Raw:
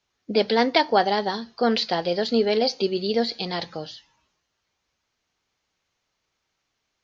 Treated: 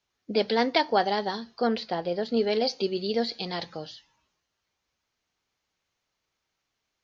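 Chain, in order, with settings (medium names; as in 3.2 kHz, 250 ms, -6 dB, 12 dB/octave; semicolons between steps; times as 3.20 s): 1.67–2.37 s: treble shelf 2.3 kHz -10.5 dB; trim -4 dB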